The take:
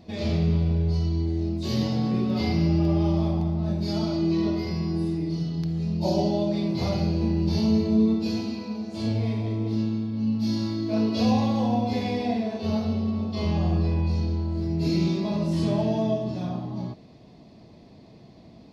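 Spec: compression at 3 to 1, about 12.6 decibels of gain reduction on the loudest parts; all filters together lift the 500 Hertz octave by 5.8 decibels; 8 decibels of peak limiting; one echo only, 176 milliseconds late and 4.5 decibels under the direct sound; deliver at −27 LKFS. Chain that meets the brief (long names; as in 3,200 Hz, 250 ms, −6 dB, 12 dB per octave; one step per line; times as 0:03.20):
parametric band 500 Hz +8 dB
downward compressor 3 to 1, threshold −33 dBFS
brickwall limiter −29 dBFS
single-tap delay 176 ms −4.5 dB
level +8 dB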